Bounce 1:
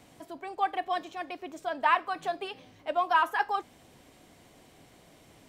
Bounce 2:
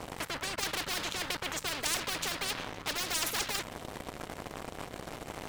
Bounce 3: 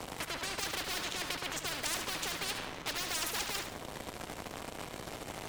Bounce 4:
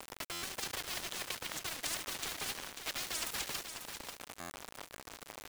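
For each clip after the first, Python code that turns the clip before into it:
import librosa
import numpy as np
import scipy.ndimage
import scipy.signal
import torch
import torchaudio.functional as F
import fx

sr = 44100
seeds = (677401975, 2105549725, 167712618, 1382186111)

y1 = fx.tilt_shelf(x, sr, db=5.5, hz=1300.0)
y1 = fx.leveller(y1, sr, passes=3)
y1 = fx.spectral_comp(y1, sr, ratio=10.0)
y1 = y1 * 10.0 ** (-3.0 / 20.0)
y2 = fx.echo_feedback(y1, sr, ms=72, feedback_pct=35, wet_db=-8)
y2 = fx.band_squash(y2, sr, depth_pct=40)
y2 = y2 * 10.0 ** (-3.0 / 20.0)
y3 = np.where(np.abs(y2) >= 10.0 ** (-33.5 / 20.0), y2, 0.0)
y3 = y3 + 10.0 ** (-8.0 / 20.0) * np.pad(y3, (int(542 * sr / 1000.0), 0))[:len(y3)]
y3 = fx.buffer_glitch(y3, sr, at_s=(0.32, 4.4), block=512, repeats=8)
y3 = y3 * 10.0 ** (-1.5 / 20.0)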